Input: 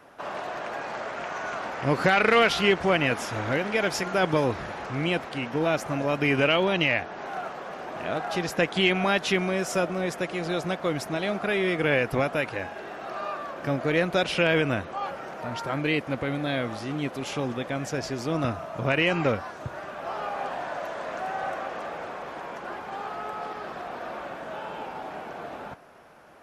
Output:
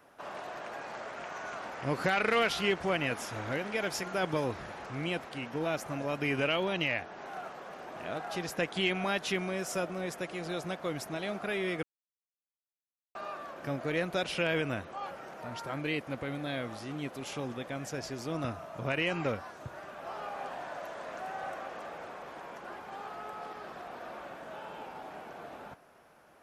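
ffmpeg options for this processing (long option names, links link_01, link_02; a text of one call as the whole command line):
ffmpeg -i in.wav -filter_complex "[0:a]asplit=3[link_01][link_02][link_03];[link_01]atrim=end=11.83,asetpts=PTS-STARTPTS,afade=type=out:start_time=11.826:duration=0.004:curve=hsin[link_04];[link_02]atrim=start=11.83:end=13.15,asetpts=PTS-STARTPTS,volume=0[link_05];[link_03]atrim=start=13.15,asetpts=PTS-STARTPTS,afade=type=in:duration=0.004:curve=hsin[link_06];[link_04][link_05][link_06]concat=n=3:v=0:a=1,highshelf=frequency=8300:gain=8,volume=-8dB" out.wav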